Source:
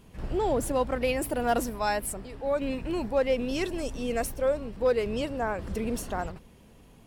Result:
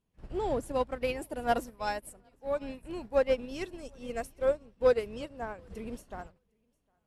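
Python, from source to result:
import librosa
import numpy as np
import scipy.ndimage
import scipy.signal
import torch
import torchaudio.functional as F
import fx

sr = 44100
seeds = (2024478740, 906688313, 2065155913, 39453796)

p1 = fx.brickwall_lowpass(x, sr, high_hz=13000.0)
p2 = fx.echo_feedback(p1, sr, ms=756, feedback_pct=28, wet_db=-18.0)
p3 = 10.0 ** (-25.5 / 20.0) * np.tanh(p2 / 10.0 ** (-25.5 / 20.0))
p4 = p2 + (p3 * 10.0 ** (-7.5 / 20.0))
y = fx.upward_expand(p4, sr, threshold_db=-39.0, expansion=2.5)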